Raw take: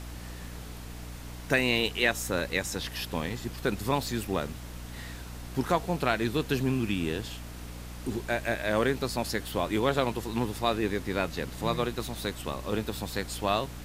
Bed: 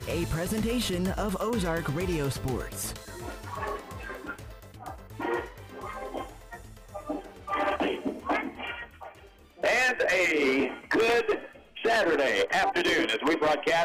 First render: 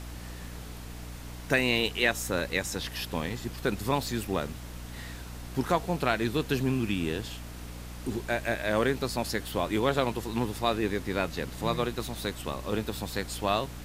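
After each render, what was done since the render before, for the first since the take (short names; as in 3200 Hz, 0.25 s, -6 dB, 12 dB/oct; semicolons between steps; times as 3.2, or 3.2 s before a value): nothing audible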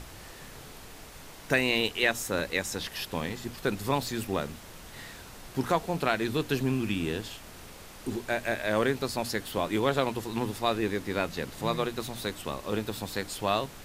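notches 60/120/180/240/300 Hz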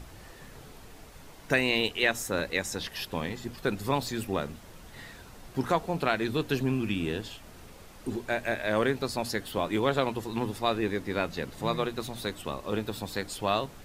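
denoiser 6 dB, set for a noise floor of -47 dBFS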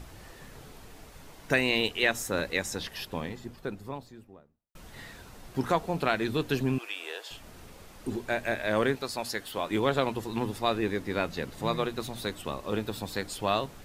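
2.61–4.75 studio fade out; 6.78–7.31 inverse Chebyshev high-pass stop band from 200 Hz, stop band 50 dB; 8.95–9.71 low shelf 370 Hz -9.5 dB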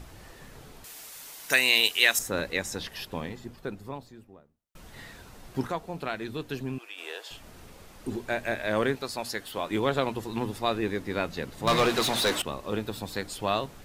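0.84–2.19 tilt +4.5 dB/oct; 5.67–6.98 gain -6 dB; 11.67–12.42 overdrive pedal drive 26 dB, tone 5500 Hz, clips at -14.5 dBFS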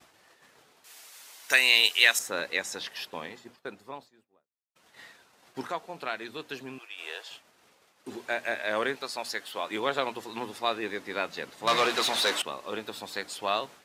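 expander -40 dBFS; weighting filter A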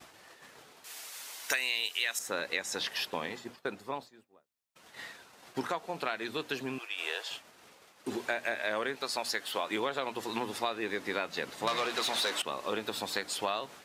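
in parallel at -2.5 dB: limiter -14.5 dBFS, peak gain reduction 9.5 dB; on the sum: compressor 6:1, threshold -29 dBFS, peak gain reduction 15.5 dB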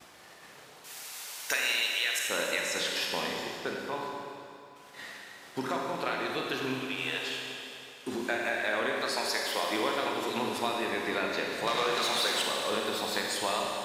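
Schroeder reverb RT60 2.7 s, combs from 31 ms, DRR -1 dB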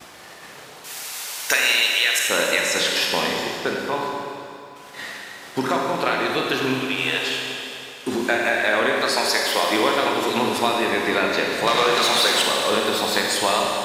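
gain +10.5 dB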